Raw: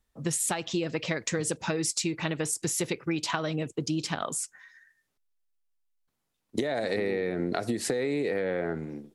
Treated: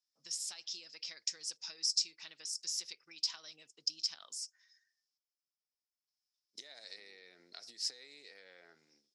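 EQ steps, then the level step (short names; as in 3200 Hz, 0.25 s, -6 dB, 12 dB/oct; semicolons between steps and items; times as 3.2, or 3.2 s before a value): band-pass 5200 Hz, Q 9.3; +7.0 dB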